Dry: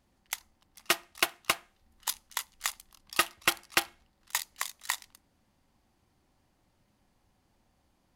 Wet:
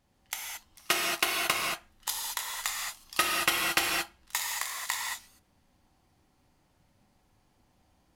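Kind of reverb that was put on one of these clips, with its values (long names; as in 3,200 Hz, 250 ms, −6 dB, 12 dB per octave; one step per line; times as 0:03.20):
reverb whose tail is shaped and stops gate 250 ms flat, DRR −2.5 dB
level −1.5 dB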